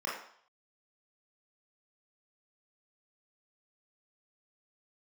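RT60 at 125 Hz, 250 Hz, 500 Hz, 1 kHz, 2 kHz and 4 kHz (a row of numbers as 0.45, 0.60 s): 0.35, 0.45, 0.55, 0.65, 0.55, 0.60 s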